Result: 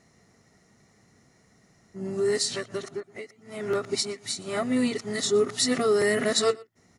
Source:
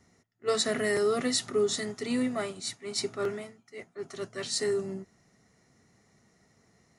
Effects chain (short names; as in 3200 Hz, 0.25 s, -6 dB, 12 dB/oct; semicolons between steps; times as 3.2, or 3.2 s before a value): whole clip reversed; echo 0.119 s -23 dB; gain +4 dB